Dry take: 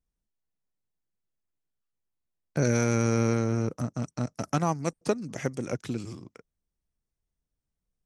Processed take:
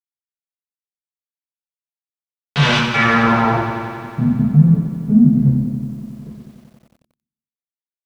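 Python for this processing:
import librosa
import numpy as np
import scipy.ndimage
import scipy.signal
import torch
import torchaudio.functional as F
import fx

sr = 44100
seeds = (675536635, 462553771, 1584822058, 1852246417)

p1 = fx.envelope_flatten(x, sr, power=0.3)
p2 = scipy.signal.sosfilt(scipy.signal.butter(2, 120.0, 'highpass', fs=sr, output='sos'), p1)
p3 = fx.dereverb_blind(p2, sr, rt60_s=1.9)
p4 = scipy.signal.sosfilt(scipy.signal.bessel(8, 4300.0, 'lowpass', norm='mag', fs=sr, output='sos'), p3)
p5 = fx.level_steps(p4, sr, step_db=22)
p6 = p4 + F.gain(torch.from_numpy(p5), 1.0).numpy()
p7 = fx.leveller(p6, sr, passes=5)
p8 = fx.rider(p7, sr, range_db=10, speed_s=0.5)
p9 = fx.fuzz(p8, sr, gain_db=41.0, gate_db=-40.0)
p10 = fx.step_gate(p9, sr, bpm=97, pattern='.xxxx.xxxx...', floor_db=-24.0, edge_ms=4.5)
p11 = fx.filter_sweep_lowpass(p10, sr, from_hz=3300.0, to_hz=210.0, start_s=2.77, end_s=4.23, q=2.3)
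p12 = fx.rev_fdn(p11, sr, rt60_s=0.81, lf_ratio=1.3, hf_ratio=0.55, size_ms=41.0, drr_db=-5.0)
p13 = fx.echo_crushed(p12, sr, ms=91, feedback_pct=80, bits=7, wet_db=-9.0)
y = F.gain(torch.from_numpy(p13), -8.0).numpy()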